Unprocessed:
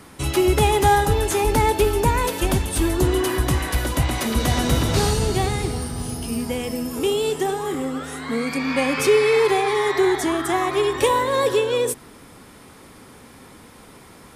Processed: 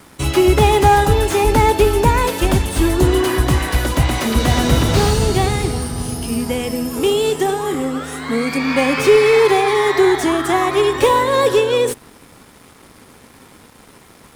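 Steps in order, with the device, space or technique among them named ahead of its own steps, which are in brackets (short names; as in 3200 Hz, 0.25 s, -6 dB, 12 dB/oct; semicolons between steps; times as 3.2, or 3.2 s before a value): early transistor amplifier (crossover distortion -49 dBFS; slew limiter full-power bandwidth 210 Hz); gain +5.5 dB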